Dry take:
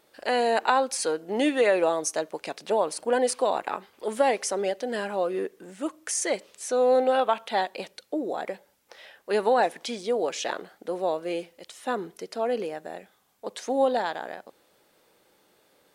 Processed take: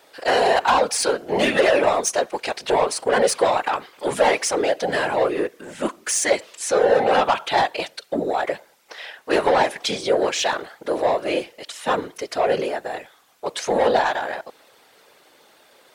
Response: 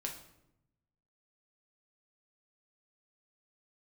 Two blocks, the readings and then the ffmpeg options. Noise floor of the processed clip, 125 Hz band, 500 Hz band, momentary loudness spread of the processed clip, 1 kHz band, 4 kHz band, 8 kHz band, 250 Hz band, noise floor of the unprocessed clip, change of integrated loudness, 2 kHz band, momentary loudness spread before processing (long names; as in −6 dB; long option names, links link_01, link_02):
−55 dBFS, can't be measured, +5.5 dB, 12 LU, +6.5 dB, +9.0 dB, +7.0 dB, +3.5 dB, −65 dBFS, +6.0 dB, +8.5 dB, 15 LU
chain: -filter_complex "[0:a]asplit=2[link_01][link_02];[link_02]highpass=frequency=720:poles=1,volume=21dB,asoftclip=type=tanh:threshold=-5dB[link_03];[link_01][link_03]amix=inputs=2:normalize=0,lowpass=frequency=5800:poles=1,volume=-6dB,afftfilt=real='hypot(re,im)*cos(2*PI*random(0))':imag='hypot(re,im)*sin(2*PI*random(1))':win_size=512:overlap=0.75,volume=3.5dB"